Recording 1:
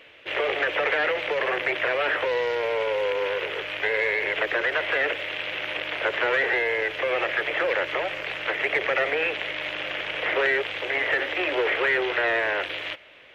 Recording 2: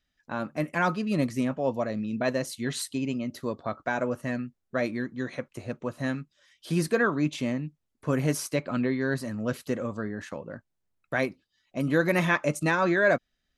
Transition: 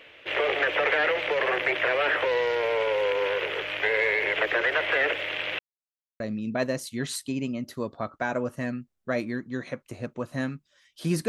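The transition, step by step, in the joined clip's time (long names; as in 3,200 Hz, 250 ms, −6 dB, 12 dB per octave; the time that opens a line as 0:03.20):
recording 1
0:05.59–0:06.20: silence
0:06.20: continue with recording 2 from 0:01.86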